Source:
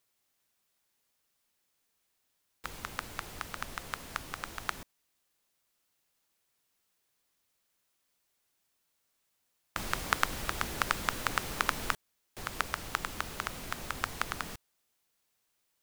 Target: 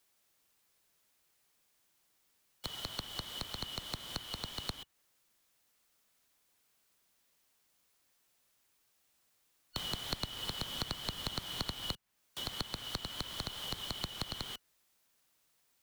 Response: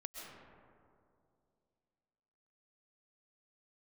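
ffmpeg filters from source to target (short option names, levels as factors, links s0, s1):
-filter_complex "[0:a]afftfilt=real='real(if(lt(b,272),68*(eq(floor(b/68),0)*1+eq(floor(b/68),1)*3+eq(floor(b/68),2)*0+eq(floor(b/68),3)*2)+mod(b,68),b),0)':imag='imag(if(lt(b,272),68*(eq(floor(b/68),0)*1+eq(floor(b/68),1)*3+eq(floor(b/68),2)*0+eq(floor(b/68),3)*2)+mod(b,68),b),0)':win_size=2048:overlap=0.75,acrossover=split=87|220|740|2900[s0][s1][s2][s3][s4];[s0]acompressor=threshold=0.00447:ratio=4[s5];[s1]acompressor=threshold=0.00501:ratio=4[s6];[s2]acompressor=threshold=0.002:ratio=4[s7];[s3]acompressor=threshold=0.00501:ratio=4[s8];[s4]acompressor=threshold=0.00447:ratio=4[s9];[s5][s6][s7][s8][s9]amix=inputs=5:normalize=0,volume=1.5"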